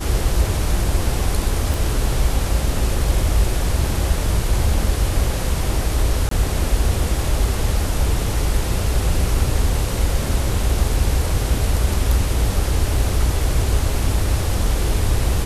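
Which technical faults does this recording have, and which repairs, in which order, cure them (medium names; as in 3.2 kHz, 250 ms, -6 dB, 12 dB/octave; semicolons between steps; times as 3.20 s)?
1.74 s: pop
6.29–6.31 s: dropout 23 ms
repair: de-click; interpolate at 6.29 s, 23 ms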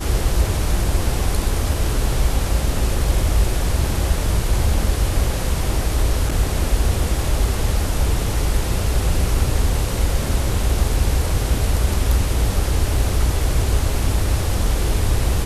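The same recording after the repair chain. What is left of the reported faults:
nothing left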